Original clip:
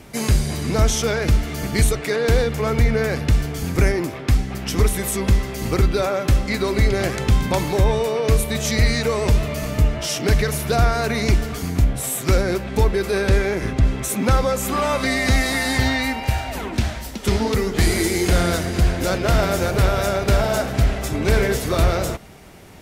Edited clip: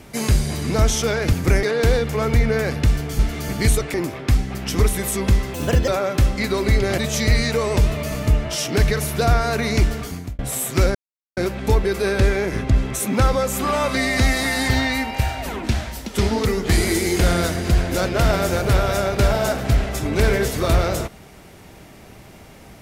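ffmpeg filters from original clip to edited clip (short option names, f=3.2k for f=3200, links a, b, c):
-filter_complex "[0:a]asplit=10[a][b][c][d][e][f][g][h][i][j];[a]atrim=end=1.332[k];[b]atrim=start=3.638:end=3.942[l];[c]atrim=start=2.078:end=3.642[m];[d]atrim=start=1.328:end=2.082[n];[e]atrim=start=3.938:end=5.544[o];[f]atrim=start=5.54:end=5.98,asetpts=PTS-STARTPTS,asetrate=57330,aresample=44100,atrim=end_sample=14926,asetpts=PTS-STARTPTS[p];[g]atrim=start=5.976:end=7.082[q];[h]atrim=start=8.488:end=11.9,asetpts=PTS-STARTPTS,afade=t=out:st=2.992:d=0.42[r];[i]atrim=start=11.9:end=12.46,asetpts=PTS-STARTPTS,afade=t=in:d=0.004:c=hsin,afade=t=out:st=0.556:d=0.004:c=hsin,apad=pad_dur=0.42[s];[j]atrim=start=12.46,asetpts=PTS-STARTPTS,afade=t=in:d=0.004:c=hsin[t];[k][l]acrossfade=d=0.004:c1=hsin:c2=hsin[u];[u][m]acrossfade=d=0.004:c1=hsin:c2=hsin[v];[v][n]acrossfade=d=0.004:c1=hsin:c2=hsin[w];[w][o]acrossfade=d=0.004:c1=hsin:c2=hsin[x];[x][p]acrossfade=d=0.004:c1=hsin:c2=hsin[y];[y][q]acrossfade=d=0.004:c1=hsin:c2=hsin[z];[r][s][t]concat=n=3:v=0:a=1[aa];[z][aa]acrossfade=d=0.004:c1=hsin:c2=hsin"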